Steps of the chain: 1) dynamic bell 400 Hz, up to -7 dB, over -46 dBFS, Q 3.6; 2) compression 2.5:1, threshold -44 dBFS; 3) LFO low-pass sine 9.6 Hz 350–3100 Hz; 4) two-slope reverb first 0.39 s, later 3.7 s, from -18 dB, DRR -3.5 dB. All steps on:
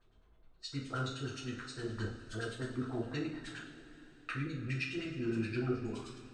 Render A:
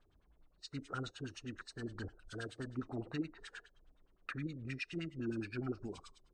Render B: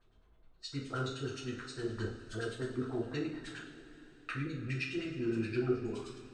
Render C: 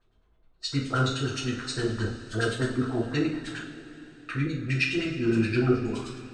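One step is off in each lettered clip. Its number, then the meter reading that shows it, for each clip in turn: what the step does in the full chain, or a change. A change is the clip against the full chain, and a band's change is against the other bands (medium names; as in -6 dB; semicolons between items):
4, momentary loudness spread change -2 LU; 1, momentary loudness spread change +1 LU; 2, mean gain reduction 9.5 dB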